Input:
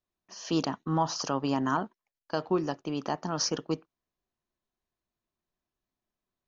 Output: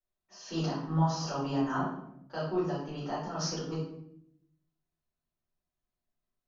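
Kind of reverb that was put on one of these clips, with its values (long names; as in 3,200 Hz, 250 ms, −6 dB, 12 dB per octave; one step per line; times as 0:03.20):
rectangular room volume 150 cubic metres, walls mixed, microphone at 4.5 metres
level −17.5 dB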